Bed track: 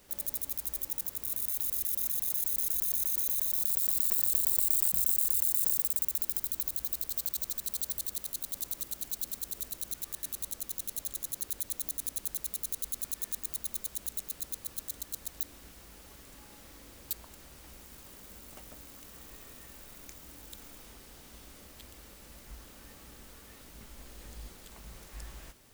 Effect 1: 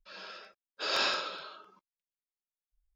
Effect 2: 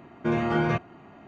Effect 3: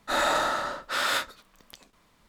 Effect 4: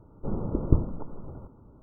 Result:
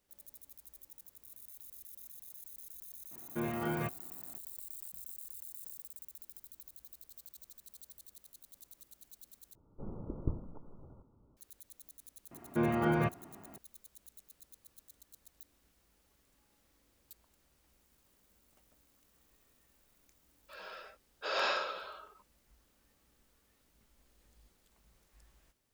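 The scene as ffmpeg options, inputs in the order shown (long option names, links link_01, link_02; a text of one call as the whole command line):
ffmpeg -i bed.wav -i cue0.wav -i cue1.wav -i cue2.wav -i cue3.wav -filter_complex "[2:a]asplit=2[link_01][link_02];[0:a]volume=-19.5dB[link_03];[link_02]lowpass=frequency=2600:poles=1[link_04];[1:a]firequalizer=gain_entry='entry(290,0);entry(480,10);entry(4500,0)':delay=0.05:min_phase=1[link_05];[link_03]asplit=2[link_06][link_07];[link_06]atrim=end=9.554[link_08];[4:a]atrim=end=1.82,asetpts=PTS-STARTPTS,volume=-13.5dB[link_09];[link_07]atrim=start=11.366[link_10];[link_01]atrim=end=1.27,asetpts=PTS-STARTPTS,volume=-11dB,afade=type=in:duration=0.004:curve=hsin,afade=type=out:start_time=1.266:duration=0.004:curve=hsin,adelay=3110[link_11];[link_04]atrim=end=1.27,asetpts=PTS-STARTPTS,volume=-5dB,afade=type=in:duration=0.004:curve=hsin,afade=type=out:start_time=1.266:duration=0.004:curve=hsin,adelay=12310[link_12];[link_05]atrim=end=2.95,asetpts=PTS-STARTPTS,volume=-8.5dB,afade=type=in:duration=0.004:curve=hsin,afade=type=out:start_time=2.946:duration=0.004:curve=hsin,adelay=20430[link_13];[link_08][link_09]acrossfade=duration=0.004:curve1=hsin:curve2=hsin[link_14];[link_14][link_10]acrossfade=duration=0.004:curve1=hsin:curve2=hsin[link_15];[link_15][link_11][link_12][link_13]amix=inputs=4:normalize=0" out.wav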